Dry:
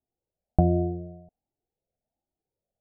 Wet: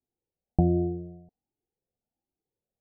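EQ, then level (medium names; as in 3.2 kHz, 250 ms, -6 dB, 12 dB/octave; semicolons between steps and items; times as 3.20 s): steep low-pass 910 Hz 48 dB/octave; bass shelf 160 Hz -7.5 dB; peaking EQ 640 Hz -12 dB 0.53 oct; +3.0 dB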